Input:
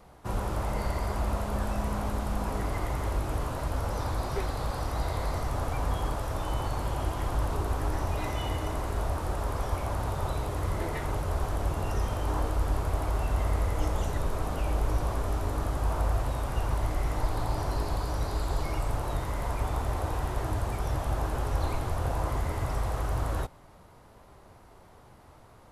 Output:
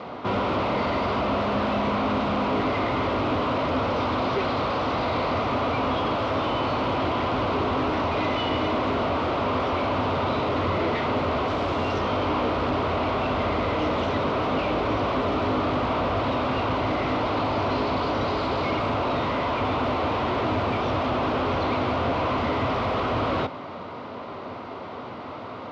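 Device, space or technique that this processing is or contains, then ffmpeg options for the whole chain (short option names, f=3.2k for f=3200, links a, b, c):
overdrive pedal into a guitar cabinet: -filter_complex "[0:a]asettb=1/sr,asplit=3[a][b][c];[a]atrim=end=11.484[d];[b]atrim=start=11.48:end=11.99,asetpts=PTS-STARTPTS,afade=t=in:d=0.004:c=qsin,afade=t=out:st=0.506:d=0.004:c=qsin,highshelf=f=5.7k:g=11[e];[c]atrim=start=11.986[f];[d][e]acrossfade=d=0.004:c1=hsin:c2=qsin[g];[g][f]acrossfade=d=0.004:c1=qsin:c2=hsin,asplit=2[h][i];[i]highpass=f=720:p=1,volume=32dB,asoftclip=type=tanh:threshold=-15.5dB[j];[h][j]amix=inputs=2:normalize=0,lowpass=f=2.2k:p=1,volume=-6dB,highpass=91,equalizer=f=95:t=q:w=4:g=6,equalizer=f=250:t=q:w=4:g=9,equalizer=f=830:t=q:w=4:g=-6,equalizer=f=1.7k:t=q:w=4:g=-9,lowpass=f=4.2k:w=0.5412,lowpass=f=4.2k:w=1.3066"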